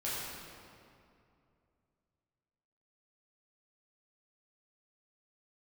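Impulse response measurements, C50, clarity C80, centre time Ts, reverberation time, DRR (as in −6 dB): −2.5 dB, −1.0 dB, 146 ms, 2.5 s, −9.0 dB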